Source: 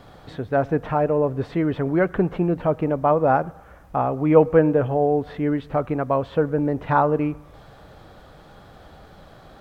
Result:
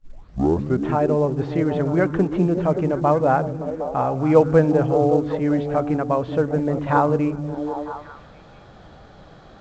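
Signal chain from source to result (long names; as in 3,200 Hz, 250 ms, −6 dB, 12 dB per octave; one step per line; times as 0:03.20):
turntable start at the beginning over 0.88 s
echo through a band-pass that steps 190 ms, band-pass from 150 Hz, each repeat 0.7 octaves, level −1.5 dB
mu-law 128 kbit/s 16,000 Hz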